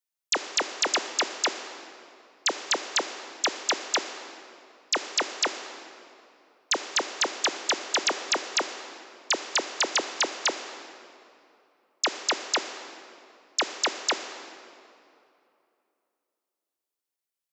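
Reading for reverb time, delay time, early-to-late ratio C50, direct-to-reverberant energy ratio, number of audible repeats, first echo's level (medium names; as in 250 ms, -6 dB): 2.8 s, no echo, 8.5 dB, 8.0 dB, no echo, no echo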